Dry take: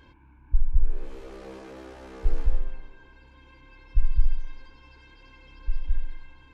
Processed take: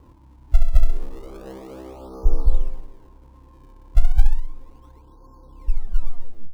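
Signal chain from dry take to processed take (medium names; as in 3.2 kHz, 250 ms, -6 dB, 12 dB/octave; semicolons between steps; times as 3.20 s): tape stop on the ending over 0.88 s; steep low-pass 1.3 kHz 96 dB/octave; in parallel at -6 dB: decimation with a swept rate 37×, swing 160% 0.33 Hz; on the sum: trim +2.5 dB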